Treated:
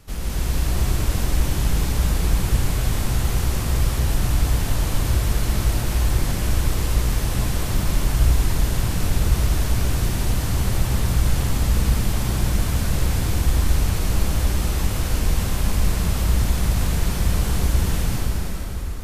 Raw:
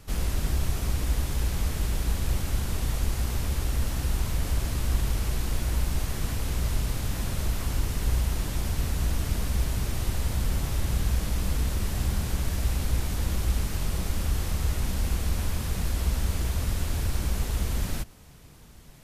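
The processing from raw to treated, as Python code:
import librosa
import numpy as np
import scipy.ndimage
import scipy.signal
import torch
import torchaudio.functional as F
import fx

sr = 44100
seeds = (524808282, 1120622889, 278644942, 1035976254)

y = fx.rev_plate(x, sr, seeds[0], rt60_s=5.0, hf_ratio=0.75, predelay_ms=115, drr_db=-6.5)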